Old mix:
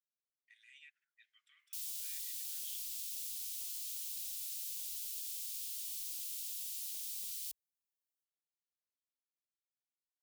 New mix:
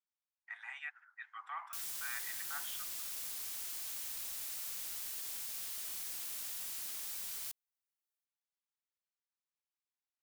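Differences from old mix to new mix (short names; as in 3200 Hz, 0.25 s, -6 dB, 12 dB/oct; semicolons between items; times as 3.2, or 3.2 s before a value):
speech +3.5 dB; master: remove inverse Chebyshev band-stop 180–810 Hz, stop band 70 dB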